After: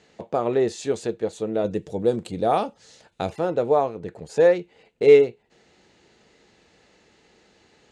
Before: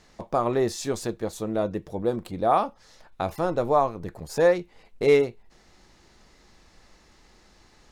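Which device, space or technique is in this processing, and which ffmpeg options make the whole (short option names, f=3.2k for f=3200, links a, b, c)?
car door speaker: -filter_complex "[0:a]highpass=110,equalizer=f=450:t=q:w=4:g=7,equalizer=f=1.1k:t=q:w=4:g=-7,equalizer=f=2.8k:t=q:w=4:g=4,equalizer=f=5.4k:t=q:w=4:g=-7,lowpass=f=8.2k:w=0.5412,lowpass=f=8.2k:w=1.3066,asettb=1/sr,asplit=3[a][b][c];[a]atrim=end=1.644[d];[b]atrim=start=1.64:end=3.31,asetpts=PTS-STARTPTS,afade=t=in:d=0.004:c=qsin,afade=t=out:st=1.666:d=0.004:c=qsin,bass=f=250:g=5,treble=f=4k:g=11[e];[c]atrim=start=3.306[f];[d][e]acrossfade=d=0.004:c1=hsin:c2=qsin[g];[g][f]acrossfade=d=0.004:c1=qsin:c2=hsin"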